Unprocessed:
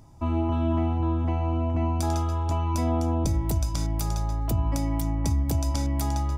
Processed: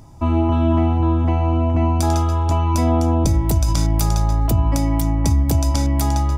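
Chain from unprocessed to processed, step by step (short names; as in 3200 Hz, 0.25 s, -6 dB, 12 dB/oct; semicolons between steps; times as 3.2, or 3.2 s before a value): 3.65–4.47 fast leveller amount 100%; gain +8 dB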